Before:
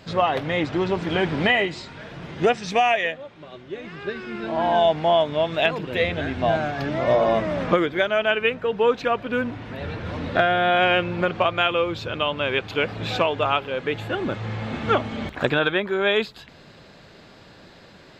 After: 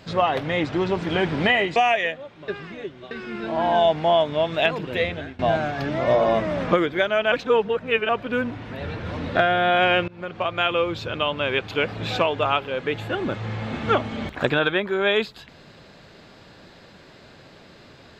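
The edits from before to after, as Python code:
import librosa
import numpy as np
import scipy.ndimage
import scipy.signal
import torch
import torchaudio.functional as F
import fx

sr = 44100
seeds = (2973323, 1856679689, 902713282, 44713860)

y = fx.edit(x, sr, fx.cut(start_s=1.76, length_s=1.0),
    fx.reverse_span(start_s=3.48, length_s=0.63),
    fx.fade_out_to(start_s=5.81, length_s=0.58, curve='qsin', floor_db=-21.0),
    fx.reverse_span(start_s=8.32, length_s=0.77),
    fx.fade_in_from(start_s=11.08, length_s=0.65, floor_db=-23.5), tone=tone)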